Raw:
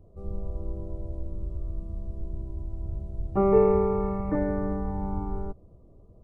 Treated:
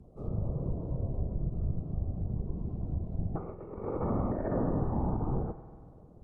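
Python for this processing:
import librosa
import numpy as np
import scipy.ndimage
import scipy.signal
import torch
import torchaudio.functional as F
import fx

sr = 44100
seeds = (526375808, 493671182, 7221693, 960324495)

y = fx.whisperise(x, sr, seeds[0])
y = fx.over_compress(y, sr, threshold_db=-28.0, ratio=-0.5)
y = fx.rev_spring(y, sr, rt60_s=2.1, pass_ms=(47,), chirp_ms=30, drr_db=13.0)
y = fx.env_lowpass_down(y, sr, base_hz=1200.0, full_db=-24.5)
y = y * librosa.db_to_amplitude(-2.5)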